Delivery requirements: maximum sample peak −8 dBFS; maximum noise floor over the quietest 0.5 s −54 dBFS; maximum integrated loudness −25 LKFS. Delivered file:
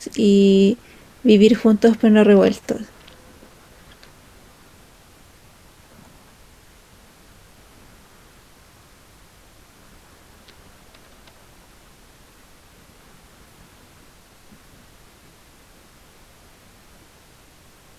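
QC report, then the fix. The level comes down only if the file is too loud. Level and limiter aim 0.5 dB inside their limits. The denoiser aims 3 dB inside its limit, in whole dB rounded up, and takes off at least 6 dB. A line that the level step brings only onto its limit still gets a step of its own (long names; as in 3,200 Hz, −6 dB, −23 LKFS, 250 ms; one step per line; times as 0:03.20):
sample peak −2.0 dBFS: out of spec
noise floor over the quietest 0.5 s −50 dBFS: out of spec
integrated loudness −15.5 LKFS: out of spec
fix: level −10 dB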